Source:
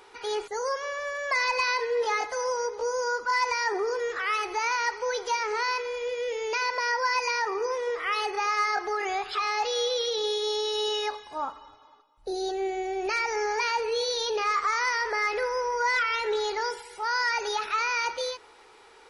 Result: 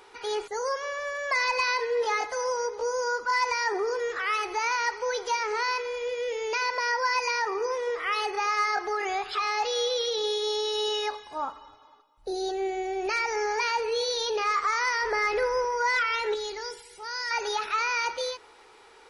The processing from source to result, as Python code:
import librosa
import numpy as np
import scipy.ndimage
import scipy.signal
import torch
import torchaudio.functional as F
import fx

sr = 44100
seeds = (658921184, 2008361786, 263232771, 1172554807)

y = fx.low_shelf(x, sr, hz=350.0, db=8.5, at=(15.03, 15.65))
y = fx.peak_eq(y, sr, hz=1000.0, db=-10.5, octaves=2.3, at=(16.34, 17.31))